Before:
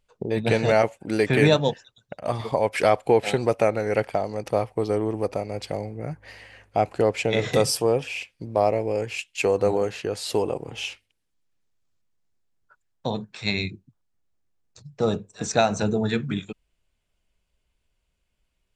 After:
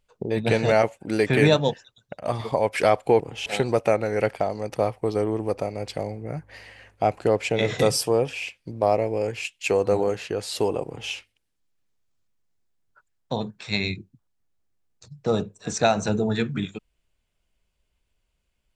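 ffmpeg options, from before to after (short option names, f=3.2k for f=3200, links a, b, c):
-filter_complex "[0:a]asplit=3[a][b][c];[a]atrim=end=3.202[d];[b]atrim=start=10.598:end=10.862[e];[c]atrim=start=3.198[f];[d][e]acrossfade=d=0.004:c1=hsin:c2=hsin[g];[g][f]acrossfade=d=0.004:c1=hsin:c2=hsin"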